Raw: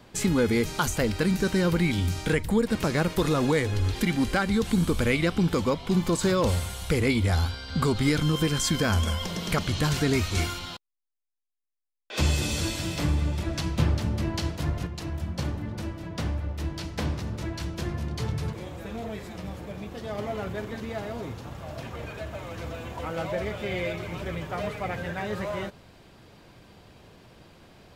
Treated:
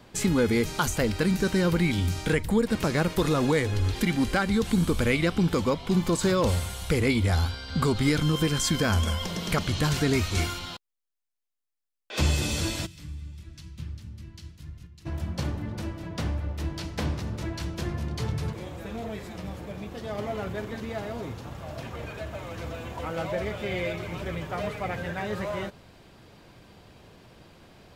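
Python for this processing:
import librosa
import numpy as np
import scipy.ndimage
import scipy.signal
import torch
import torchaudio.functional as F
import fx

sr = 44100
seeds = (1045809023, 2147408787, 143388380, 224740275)

y = fx.tone_stack(x, sr, knobs='6-0-2', at=(12.85, 15.05), fade=0.02)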